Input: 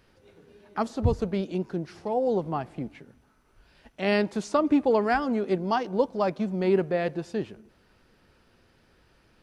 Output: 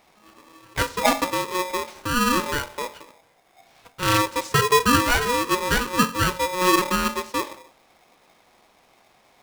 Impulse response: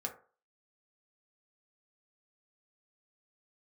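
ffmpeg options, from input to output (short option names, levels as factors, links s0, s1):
-filter_complex "[0:a]bandreject=f=47.17:t=h:w=4,bandreject=f=94.34:t=h:w=4,bandreject=f=141.51:t=h:w=4,bandreject=f=188.68:t=h:w=4,asplit=2[s0][s1];[1:a]atrim=start_sample=2205,adelay=27[s2];[s1][s2]afir=irnorm=-1:irlink=0,volume=0.237[s3];[s0][s3]amix=inputs=2:normalize=0,aeval=exprs='val(0)*sgn(sin(2*PI*730*n/s))':c=same,volume=1.5"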